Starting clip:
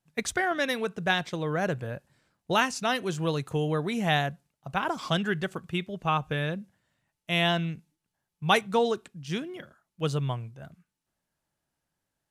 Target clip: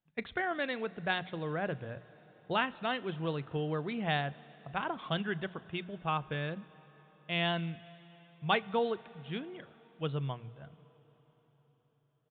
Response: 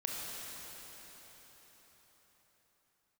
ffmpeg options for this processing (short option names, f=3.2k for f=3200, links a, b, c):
-filter_complex "[0:a]bandreject=f=60:t=h:w=6,bandreject=f=120:t=h:w=6,bandreject=f=180:t=h:w=6,asplit=2[a][b];[1:a]atrim=start_sample=2205,adelay=36[c];[b][c]afir=irnorm=-1:irlink=0,volume=-21.5dB[d];[a][d]amix=inputs=2:normalize=0,aresample=8000,aresample=44100,volume=-6.5dB"